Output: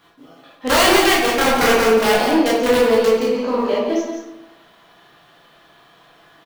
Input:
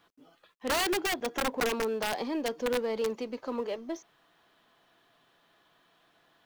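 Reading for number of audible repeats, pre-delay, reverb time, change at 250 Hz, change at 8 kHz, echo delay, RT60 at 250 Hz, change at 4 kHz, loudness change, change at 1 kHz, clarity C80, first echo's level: 1, 13 ms, 0.90 s, +16.0 dB, +14.0 dB, 173 ms, 1.1 s, +15.5 dB, +16.0 dB, +16.5 dB, 2.5 dB, -6.5 dB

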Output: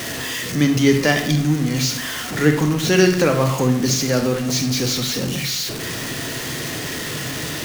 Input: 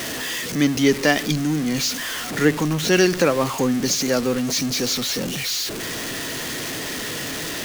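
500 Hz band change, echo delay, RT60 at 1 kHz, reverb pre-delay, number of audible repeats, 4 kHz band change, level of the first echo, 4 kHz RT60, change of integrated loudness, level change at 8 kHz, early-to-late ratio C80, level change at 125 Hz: +1.5 dB, no echo, 0.75 s, 25 ms, no echo, +1.0 dB, no echo, 0.50 s, +2.0 dB, +1.0 dB, 11.5 dB, +7.5 dB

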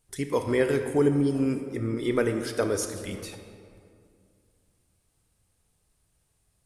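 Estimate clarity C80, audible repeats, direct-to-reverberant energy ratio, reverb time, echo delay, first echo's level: 9.0 dB, no echo, 7.0 dB, 2.3 s, no echo, no echo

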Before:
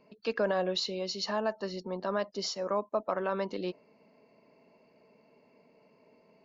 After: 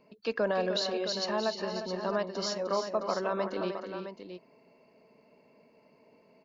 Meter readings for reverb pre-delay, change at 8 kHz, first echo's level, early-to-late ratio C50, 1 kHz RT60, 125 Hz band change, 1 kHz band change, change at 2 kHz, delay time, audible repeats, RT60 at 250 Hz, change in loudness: no reverb, no reading, -8.5 dB, no reverb, no reverb, +0.5 dB, +1.0 dB, +1.0 dB, 305 ms, 3, no reverb, +1.0 dB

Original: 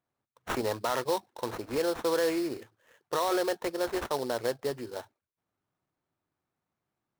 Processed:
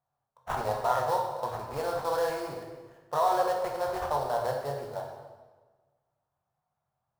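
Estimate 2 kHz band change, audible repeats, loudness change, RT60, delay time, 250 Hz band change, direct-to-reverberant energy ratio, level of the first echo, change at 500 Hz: -2.0 dB, no echo, +1.0 dB, 1.3 s, no echo, -9.5 dB, 0.0 dB, no echo, 0.0 dB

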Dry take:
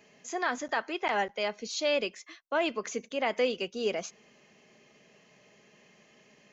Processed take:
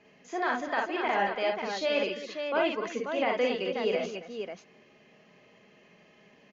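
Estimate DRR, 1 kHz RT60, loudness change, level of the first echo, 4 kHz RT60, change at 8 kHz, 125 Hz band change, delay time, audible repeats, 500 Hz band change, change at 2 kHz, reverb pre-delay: no reverb, no reverb, +1.0 dB, -4.5 dB, no reverb, no reading, no reading, 45 ms, 4, +2.5 dB, +1.5 dB, no reverb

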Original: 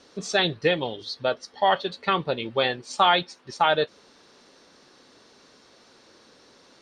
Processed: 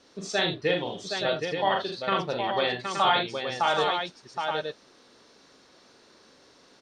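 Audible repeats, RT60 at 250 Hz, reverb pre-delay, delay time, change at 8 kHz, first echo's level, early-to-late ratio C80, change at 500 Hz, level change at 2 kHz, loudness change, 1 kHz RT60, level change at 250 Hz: 4, no reverb, no reverb, 41 ms, -2.0 dB, -4.5 dB, no reverb, -2.0 dB, -2.0 dB, -3.0 dB, no reverb, -2.0 dB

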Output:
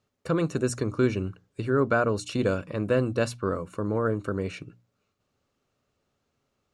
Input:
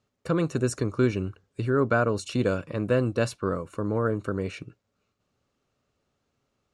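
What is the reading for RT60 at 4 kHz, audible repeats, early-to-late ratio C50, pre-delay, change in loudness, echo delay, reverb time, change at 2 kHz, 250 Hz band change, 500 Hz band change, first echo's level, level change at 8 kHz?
no reverb, no echo, no reverb, no reverb, -0.5 dB, no echo, no reverb, 0.0 dB, -0.5 dB, 0.0 dB, no echo, 0.0 dB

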